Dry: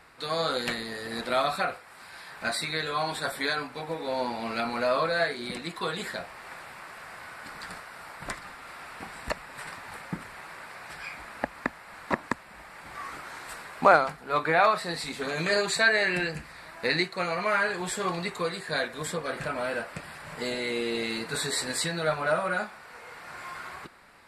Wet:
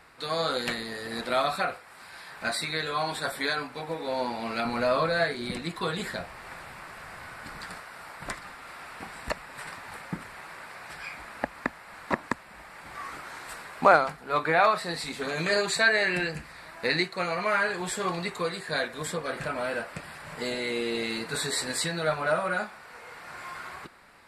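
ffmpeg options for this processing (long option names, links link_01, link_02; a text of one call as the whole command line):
ffmpeg -i in.wav -filter_complex "[0:a]asettb=1/sr,asplit=3[link_01][link_02][link_03];[link_01]atrim=end=4.654[link_04];[link_02]atrim=start=4.65:end=7.64,asetpts=PTS-STARTPTS,afade=type=in:duration=0.004:curve=qsin,afade=type=out:start_time=2.986:duration=0.004:curve=qsin,lowshelf=frequency=160:gain=10.5[link_05];[link_03]atrim=start=7.636[link_06];[link_04][link_05]acrossfade=duration=0.004:curve1=hsin:curve2=qsin[link_07];[link_07][link_06]acrossfade=duration=0.004:curve1=qsin:curve2=hsin" out.wav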